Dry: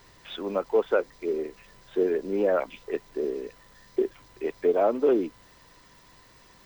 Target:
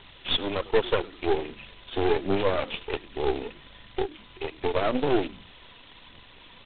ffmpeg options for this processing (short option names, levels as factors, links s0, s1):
-filter_complex "[0:a]asplit=3[s0][s1][s2];[s0]afade=t=out:st=2.11:d=0.02[s3];[s1]equalizer=f=81:t=o:w=0.42:g=-12,afade=t=in:st=2.11:d=0.02,afade=t=out:st=2.69:d=0.02[s4];[s2]afade=t=in:st=2.69:d=0.02[s5];[s3][s4][s5]amix=inputs=3:normalize=0,asplit=3[s6][s7][s8];[s6]afade=t=out:st=4.03:d=0.02[s9];[s7]acompressor=threshold=0.0251:ratio=2.5,afade=t=in:st=4.03:d=0.02,afade=t=out:st=4.65:d=0.02[s10];[s8]afade=t=in:st=4.65:d=0.02[s11];[s9][s10][s11]amix=inputs=3:normalize=0,alimiter=limit=0.126:level=0:latency=1:release=61,aphaser=in_gain=1:out_gain=1:delay=4.5:decay=0.49:speed=1.3:type=triangular,asplit=4[s12][s13][s14][s15];[s13]adelay=100,afreqshift=-83,volume=0.112[s16];[s14]adelay=200,afreqshift=-166,volume=0.0462[s17];[s15]adelay=300,afreqshift=-249,volume=0.0188[s18];[s12][s16][s17][s18]amix=inputs=4:normalize=0,aexciter=amount=7.5:drive=1.1:freq=2500,aeval=exprs='0.251*(cos(1*acos(clip(val(0)/0.251,-1,1)))-cos(1*PI/2))+0.00316*(cos(5*acos(clip(val(0)/0.251,-1,1)))-cos(5*PI/2))+0.0447*(cos(6*acos(clip(val(0)/0.251,-1,1)))-cos(6*PI/2))+0.00501*(cos(7*acos(clip(val(0)/0.251,-1,1)))-cos(7*PI/2))':c=same" -ar 8000 -c:a adpcm_g726 -b:a 16k